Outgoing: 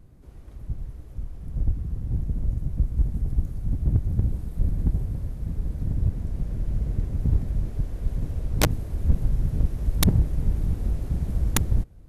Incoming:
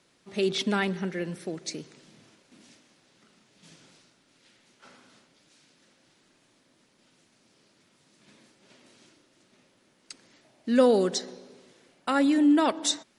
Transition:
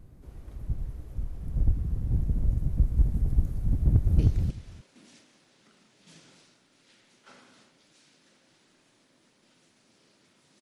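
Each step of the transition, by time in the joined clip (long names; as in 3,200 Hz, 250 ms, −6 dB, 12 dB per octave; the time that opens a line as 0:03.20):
outgoing
0:03.75–0:04.19: delay throw 310 ms, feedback 10%, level −0.5 dB
0:04.19: continue with incoming from 0:01.75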